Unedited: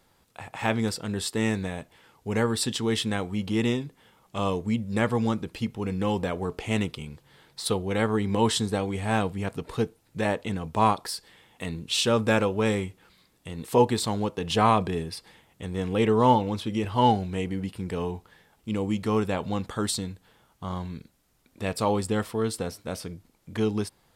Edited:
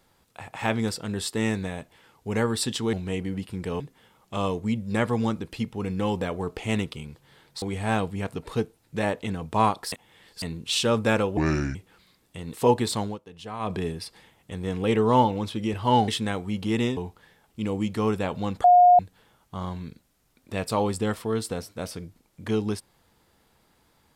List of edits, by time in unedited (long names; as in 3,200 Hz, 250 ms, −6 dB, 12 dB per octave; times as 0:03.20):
0:02.93–0:03.82: swap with 0:17.19–0:18.06
0:07.64–0:08.84: remove
0:11.14–0:11.64: reverse
0:12.59–0:12.86: play speed 71%
0:14.13–0:14.87: duck −15.5 dB, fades 0.17 s
0:19.73–0:20.08: beep over 715 Hz −11 dBFS